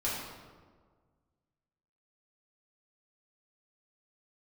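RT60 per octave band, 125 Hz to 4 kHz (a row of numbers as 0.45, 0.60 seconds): 2.0, 1.8, 1.7, 1.5, 1.1, 0.90 seconds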